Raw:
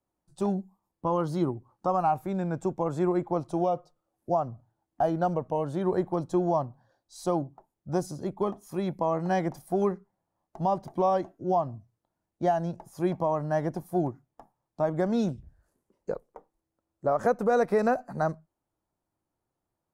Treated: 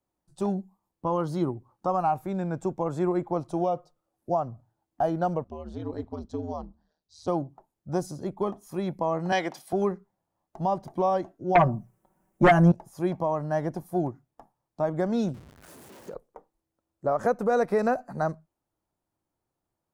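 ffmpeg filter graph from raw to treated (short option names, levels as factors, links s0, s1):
-filter_complex "[0:a]asettb=1/sr,asplit=3[s0][s1][s2];[s0]atrim=end=5.444[s3];[s1]atrim=start=5.44:end=7.28,asetpts=PTS-STARTPTS,afade=t=in:d=0.004:c=qsin,afade=t=out:st=1.836:d=0.004:c=qsin,lowpass=f=4700:t=q:w=1.6,equalizer=f=1100:w=0.31:g=-9,aeval=exprs='val(0)*sin(2*PI*79*n/s)':c=same[s4];[s2]atrim=start=7.276[s5];[s3][s4]acrossfade=d=0.004:c1=hsin:c2=qsin[s6];[s6][s5]acrossfade=d=0.004:c1=qsin:c2=hsin,asettb=1/sr,asplit=3[s7][s8][s9];[s7]atrim=end=9.324[s10];[s8]atrim=start=9.32:end=9.73,asetpts=PTS-STARTPTS,afade=t=in:d=0.004:c=qsin,afade=t=out:st=0.406:d=0.004:c=qsin,highpass=290,equalizer=f=3200:w=0.73:g=13.5[s11];[s9]atrim=start=9.726[s12];[s10][s11]acrossfade=d=0.004:c1=hsin:c2=qsin[s13];[s13][s12]acrossfade=d=0.004:c1=qsin:c2=hsin,asettb=1/sr,asplit=3[s14][s15][s16];[s14]atrim=end=11.554[s17];[s15]atrim=start=11.55:end=12.72,asetpts=PTS-STARTPTS,afade=t=in:d=0.004:c=qsin,afade=t=out:st=1.166:d=0.004:c=qsin,equalizer=f=4100:w=1.3:g=-14.5,aecho=1:1:5.3:0.95,atrim=end_sample=51597,aeval=exprs='0.251*sin(PI/2*2.24*val(0)/0.251)':c=same[s18];[s16]atrim=start=12.716[s19];[s17][s18]acrossfade=d=0.004:c1=hsin:c2=qsin[s20];[s20][s19]acrossfade=d=0.004:c1=qsin:c2=hsin,asettb=1/sr,asplit=3[s21][s22][s23];[s21]atrim=end=15.344[s24];[s22]atrim=start=15.34:end=16.14,asetpts=PTS-STARTPTS,afade=t=in:d=0.004:c=qsin,afade=t=out:st=0.796:d=0.004:c=qsin,aeval=exprs='val(0)+0.5*0.0075*sgn(val(0))':c=same,highpass=110,acompressor=threshold=0.0158:ratio=5:attack=3.2:release=140:knee=1:detection=peak[s25];[s23]atrim=start=16.136[s26];[s24][s25]acrossfade=d=0.004:c1=hsin:c2=qsin[s27];[s27][s26]acrossfade=d=0.004:c1=qsin:c2=hsin"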